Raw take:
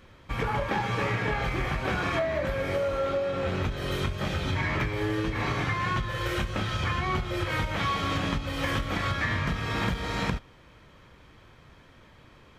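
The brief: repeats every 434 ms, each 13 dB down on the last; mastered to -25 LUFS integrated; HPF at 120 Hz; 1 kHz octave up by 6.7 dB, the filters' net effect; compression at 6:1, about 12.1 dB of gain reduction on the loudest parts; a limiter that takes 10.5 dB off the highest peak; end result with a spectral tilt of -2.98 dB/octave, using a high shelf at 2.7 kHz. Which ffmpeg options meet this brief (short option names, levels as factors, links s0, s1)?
-af "highpass=120,equalizer=f=1000:t=o:g=7.5,highshelf=f=2700:g=3.5,acompressor=threshold=0.0224:ratio=6,alimiter=level_in=2.24:limit=0.0631:level=0:latency=1,volume=0.447,aecho=1:1:434|868|1302:0.224|0.0493|0.0108,volume=5.01"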